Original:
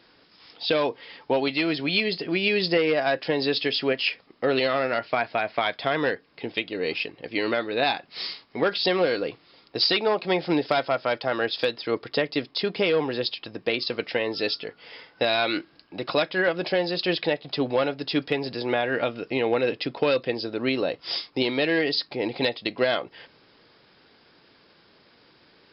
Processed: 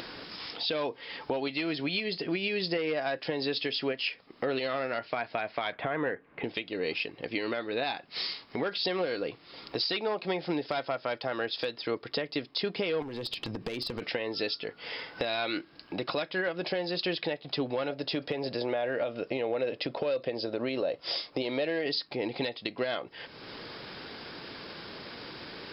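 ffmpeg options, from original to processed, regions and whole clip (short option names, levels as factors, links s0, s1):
-filter_complex "[0:a]asettb=1/sr,asplit=3[s0][s1][s2];[s0]atrim=end=5.724[s3];[s1]atrim=start=5.72:end=6.44,asetpts=PTS-STARTPTS,afade=t=in:d=0.004:c=qsin,afade=t=out:st=0.716:d=0.004:c=qsin,lowpass=f=2300:w=0.5412,lowpass=f=2300:w=1.3066,acontrast=25[s4];[s2]atrim=start=6.436[s5];[s3][s4]acrossfade=d=0.004:c1=hsin:c2=qsin[s6];[s6][s5]acrossfade=d=0.004:c1=qsin:c2=hsin,asettb=1/sr,asplit=3[s7][s8][s9];[s7]atrim=end=13.024[s10];[s8]atrim=start=13.02:end=14.02,asetpts=PTS-STARTPTS,afade=t=in:d=0.004:c=qsin,afade=t=out:st=0.996:d=0.004:c=qsin,lowshelf=f=350:g=10.5,acompressor=threshold=0.0355:ratio=16:attack=3.2:release=140:knee=1:detection=peak,aeval=exprs='clip(val(0),-1,0.0299)':c=same[s11];[s9]atrim=start=14.016[s12];[s10][s11]acrossfade=d=0.004:c1=hsin:c2=qsin[s13];[s13][s12]acrossfade=d=0.004:c1=qsin:c2=hsin,asettb=1/sr,asplit=3[s14][s15][s16];[s14]atrim=end=17.904[s17];[s15]atrim=start=17.9:end=21.86,asetpts=PTS-STARTPTS,afade=t=in:d=0.004:c=qsin,afade=t=out:st=3.956:d=0.004:c=qsin,acompressor=threshold=0.0562:ratio=3:attack=3.2:release=140:knee=1:detection=peak,equalizer=f=580:w=2.6:g=9.5[s18];[s16]atrim=start=21.856[s19];[s17][s18]acrossfade=d=0.004:c1=hsin:c2=qsin[s20];[s20][s19]acrossfade=d=0.004:c1=qsin:c2=hsin,acompressor=mode=upward:threshold=0.0316:ratio=2.5,alimiter=limit=0.178:level=0:latency=1:release=317,acompressor=threshold=0.0282:ratio=2"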